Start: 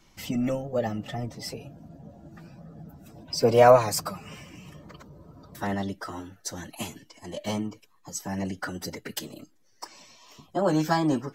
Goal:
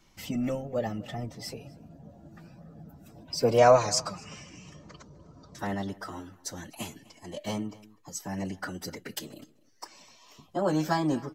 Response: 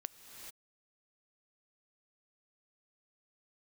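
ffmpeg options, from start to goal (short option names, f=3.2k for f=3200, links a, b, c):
-filter_complex "[0:a]asettb=1/sr,asplit=3[a][b][c];[a]atrim=end=3.584[d];[b]atrim=start=3.58:end=5.59,asetpts=PTS-STARTPTS,afade=t=in:d=0.004:c=qsin,afade=t=out:st=2.006:d=0.004:c=qsin,lowpass=f=6.3k:t=q:w=2.6[e];[c]atrim=start=5.586[f];[d][e]acrossfade=d=0.004:c1=hsin:c2=qsin[g];[g][f]acrossfade=d=0.004:c1=qsin:c2=hsin,asplit=2[h][i];[i]adelay=250.7,volume=-21dB,highshelf=f=4k:g=-5.64[j];[h][j]amix=inputs=2:normalize=0,volume=-3dB"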